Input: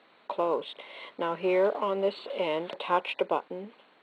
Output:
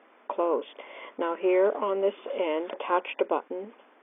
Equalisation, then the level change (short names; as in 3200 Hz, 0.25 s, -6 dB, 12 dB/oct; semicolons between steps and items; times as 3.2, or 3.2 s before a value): brick-wall FIR band-pass 210–3600 Hz; air absorption 470 m; dynamic EQ 780 Hz, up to -4 dB, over -38 dBFS, Q 0.97; +5.5 dB